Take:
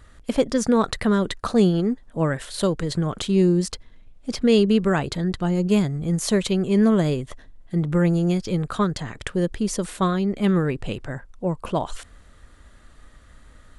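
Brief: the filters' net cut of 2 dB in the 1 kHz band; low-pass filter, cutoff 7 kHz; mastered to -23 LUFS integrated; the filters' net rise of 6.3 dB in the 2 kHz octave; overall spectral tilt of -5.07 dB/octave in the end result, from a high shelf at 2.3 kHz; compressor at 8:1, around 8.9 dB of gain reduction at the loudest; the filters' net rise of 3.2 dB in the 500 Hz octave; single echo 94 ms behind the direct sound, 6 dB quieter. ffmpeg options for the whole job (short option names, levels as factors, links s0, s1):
-af "lowpass=7000,equalizer=f=500:t=o:g=5,equalizer=f=1000:t=o:g=-8,equalizer=f=2000:t=o:g=6.5,highshelf=f=2300:g=7.5,acompressor=threshold=0.112:ratio=8,aecho=1:1:94:0.501,volume=1.12"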